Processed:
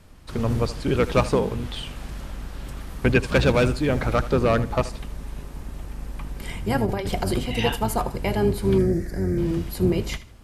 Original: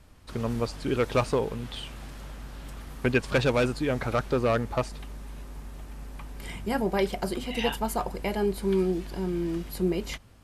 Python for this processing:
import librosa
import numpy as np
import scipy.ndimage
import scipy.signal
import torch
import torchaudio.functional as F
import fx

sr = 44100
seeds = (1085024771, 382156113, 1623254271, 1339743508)

y = fx.octave_divider(x, sr, octaves=1, level_db=-1.0)
y = fx.quant_float(y, sr, bits=6, at=(3.26, 4.18))
y = fx.over_compress(y, sr, threshold_db=-29.0, ratio=-1.0, at=(6.85, 7.39), fade=0.02)
y = fx.curve_eq(y, sr, hz=(620.0, 970.0, 1900.0, 2900.0, 5400.0), db=(0, -13, 7, -22, 0), at=(8.78, 9.38))
y = fx.echo_feedback(y, sr, ms=78, feedback_pct=28, wet_db=-16.0)
y = y * 10.0 ** (4.0 / 20.0)